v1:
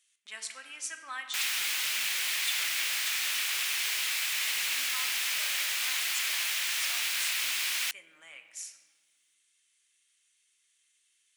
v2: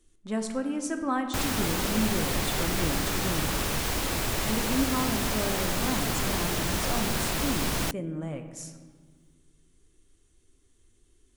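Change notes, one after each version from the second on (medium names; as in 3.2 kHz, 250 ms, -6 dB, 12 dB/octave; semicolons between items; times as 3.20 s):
second sound: muted; master: remove resonant high-pass 2.3 kHz, resonance Q 1.8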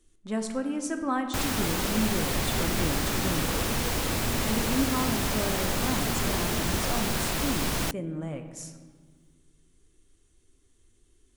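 second sound: unmuted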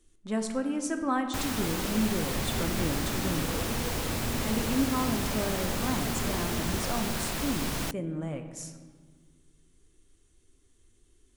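first sound -4.0 dB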